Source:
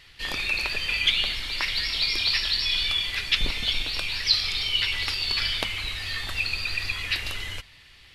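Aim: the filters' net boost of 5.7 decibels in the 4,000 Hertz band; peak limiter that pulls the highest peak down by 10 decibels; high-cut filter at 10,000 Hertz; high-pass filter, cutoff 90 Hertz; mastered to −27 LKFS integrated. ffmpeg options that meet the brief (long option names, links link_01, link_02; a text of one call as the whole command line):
ffmpeg -i in.wav -af "highpass=90,lowpass=10000,equalizer=frequency=4000:width_type=o:gain=7,volume=-5.5dB,alimiter=limit=-18dB:level=0:latency=1" out.wav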